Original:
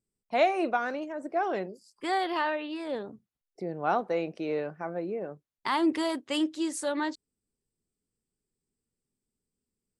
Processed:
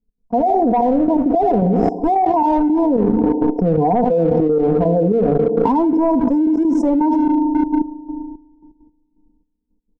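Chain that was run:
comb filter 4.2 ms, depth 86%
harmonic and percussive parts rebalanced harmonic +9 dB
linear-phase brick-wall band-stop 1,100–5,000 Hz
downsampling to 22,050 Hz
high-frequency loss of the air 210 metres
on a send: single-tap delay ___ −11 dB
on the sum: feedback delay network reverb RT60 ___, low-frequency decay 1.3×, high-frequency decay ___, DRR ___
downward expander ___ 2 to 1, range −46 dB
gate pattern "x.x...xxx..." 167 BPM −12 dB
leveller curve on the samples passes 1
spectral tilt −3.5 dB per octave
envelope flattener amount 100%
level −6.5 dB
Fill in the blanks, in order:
77 ms, 2.9 s, 0.55×, 19 dB, −38 dBFS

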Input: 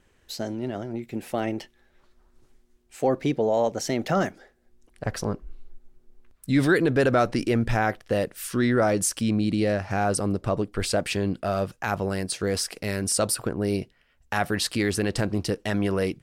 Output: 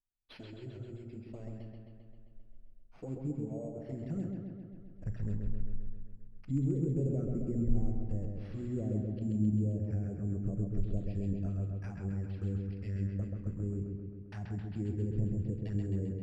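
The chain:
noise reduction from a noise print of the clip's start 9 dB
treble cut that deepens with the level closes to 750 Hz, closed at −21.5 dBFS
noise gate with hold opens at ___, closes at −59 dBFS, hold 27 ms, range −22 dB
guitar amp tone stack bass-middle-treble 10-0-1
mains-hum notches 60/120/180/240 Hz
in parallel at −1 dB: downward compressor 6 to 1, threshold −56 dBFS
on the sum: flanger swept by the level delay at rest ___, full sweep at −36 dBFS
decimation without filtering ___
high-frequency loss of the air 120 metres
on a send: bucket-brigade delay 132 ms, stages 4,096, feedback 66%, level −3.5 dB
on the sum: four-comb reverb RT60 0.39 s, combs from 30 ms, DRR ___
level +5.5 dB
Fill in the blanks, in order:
−56 dBFS, 8.2 ms, 6×, 12 dB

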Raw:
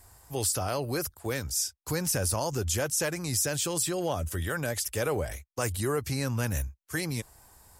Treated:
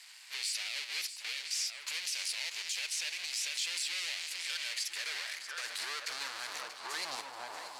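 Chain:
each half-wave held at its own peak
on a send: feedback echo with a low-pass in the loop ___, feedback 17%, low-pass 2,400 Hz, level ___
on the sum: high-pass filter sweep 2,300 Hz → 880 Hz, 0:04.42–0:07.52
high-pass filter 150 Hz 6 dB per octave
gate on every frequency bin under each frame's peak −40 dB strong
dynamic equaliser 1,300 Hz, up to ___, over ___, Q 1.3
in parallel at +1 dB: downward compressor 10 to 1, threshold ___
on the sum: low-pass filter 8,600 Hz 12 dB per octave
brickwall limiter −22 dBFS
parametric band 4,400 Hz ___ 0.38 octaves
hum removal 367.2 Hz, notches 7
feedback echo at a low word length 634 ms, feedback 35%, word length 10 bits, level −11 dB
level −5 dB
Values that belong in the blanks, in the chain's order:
1,014 ms, −11.5 dB, −7 dB, −45 dBFS, −41 dBFS, +8 dB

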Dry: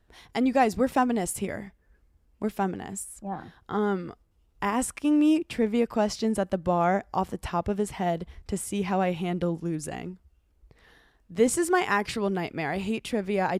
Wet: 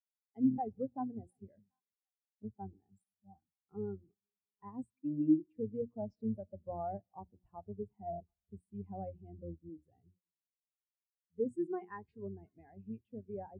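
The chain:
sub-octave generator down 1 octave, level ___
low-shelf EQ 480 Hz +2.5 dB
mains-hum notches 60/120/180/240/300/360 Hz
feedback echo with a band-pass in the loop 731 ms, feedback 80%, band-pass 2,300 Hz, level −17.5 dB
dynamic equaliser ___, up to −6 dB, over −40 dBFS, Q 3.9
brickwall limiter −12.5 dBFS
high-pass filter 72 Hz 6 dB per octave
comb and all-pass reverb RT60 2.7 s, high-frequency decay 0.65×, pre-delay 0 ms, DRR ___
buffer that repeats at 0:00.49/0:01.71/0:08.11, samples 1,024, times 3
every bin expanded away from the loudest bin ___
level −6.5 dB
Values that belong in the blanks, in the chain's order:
−1 dB, 140 Hz, 19 dB, 2.5 to 1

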